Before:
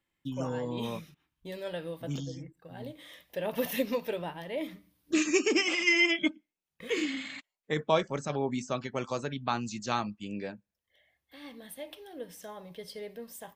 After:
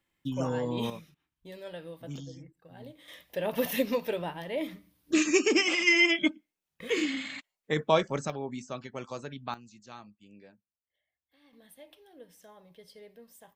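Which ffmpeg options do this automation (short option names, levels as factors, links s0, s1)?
-af "asetnsamples=n=441:p=0,asendcmd='0.9 volume volume -5dB;3.08 volume volume 2dB;8.3 volume volume -5.5dB;9.54 volume volume -16.5dB;11.53 volume volume -9.5dB',volume=1.41"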